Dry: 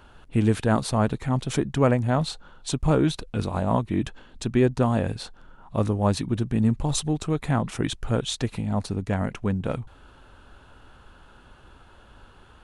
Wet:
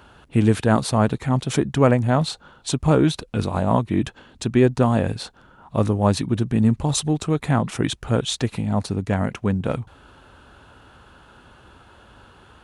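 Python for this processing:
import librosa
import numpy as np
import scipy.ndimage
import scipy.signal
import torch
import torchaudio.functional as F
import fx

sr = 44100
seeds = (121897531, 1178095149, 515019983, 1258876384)

y = scipy.signal.sosfilt(scipy.signal.butter(2, 64.0, 'highpass', fs=sr, output='sos'), x)
y = F.gain(torch.from_numpy(y), 4.0).numpy()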